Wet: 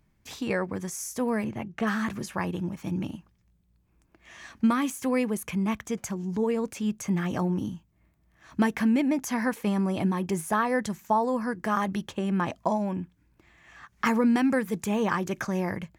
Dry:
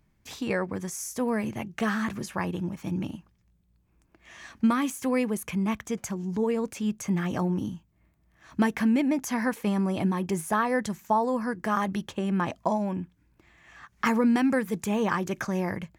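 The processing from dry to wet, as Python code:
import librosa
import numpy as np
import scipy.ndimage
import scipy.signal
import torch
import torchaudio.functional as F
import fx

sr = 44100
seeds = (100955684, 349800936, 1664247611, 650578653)

y = fx.high_shelf(x, sr, hz=3900.0, db=-12.0, at=(1.44, 1.87))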